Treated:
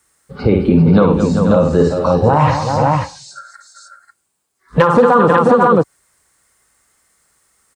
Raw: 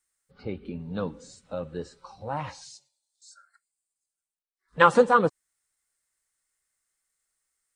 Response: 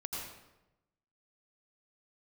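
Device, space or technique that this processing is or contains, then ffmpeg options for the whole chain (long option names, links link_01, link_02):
mastering chain: -filter_complex "[0:a]highpass=53,equalizer=frequency=1100:width_type=o:width=0.73:gain=4,aecho=1:1:54|101|215|390|483|540:0.473|0.133|0.178|0.237|0.188|0.422,acrossover=split=480|1400|4200[link_01][link_02][link_03][link_04];[link_01]acompressor=threshold=-32dB:ratio=4[link_05];[link_02]acompressor=threshold=-27dB:ratio=4[link_06];[link_03]acompressor=threshold=-36dB:ratio=4[link_07];[link_04]acompressor=threshold=-59dB:ratio=4[link_08];[link_05][link_06][link_07][link_08]amix=inputs=4:normalize=0,acompressor=threshold=-27dB:ratio=2,tiltshelf=frequency=850:gain=5,asoftclip=type=hard:threshold=-18.5dB,alimiter=level_in=23.5dB:limit=-1dB:release=50:level=0:latency=1,volume=-1dB"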